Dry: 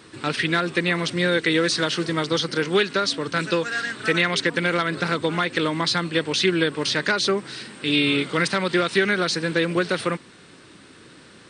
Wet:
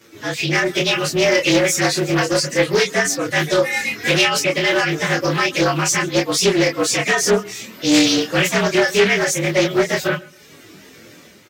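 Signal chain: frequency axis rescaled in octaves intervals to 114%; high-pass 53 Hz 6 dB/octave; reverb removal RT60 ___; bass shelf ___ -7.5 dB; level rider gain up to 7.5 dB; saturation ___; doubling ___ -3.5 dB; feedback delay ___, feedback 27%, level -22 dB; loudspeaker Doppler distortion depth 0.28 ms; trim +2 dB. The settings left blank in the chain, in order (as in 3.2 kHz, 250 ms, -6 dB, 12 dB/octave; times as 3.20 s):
0.66 s, 96 Hz, -11 dBFS, 27 ms, 134 ms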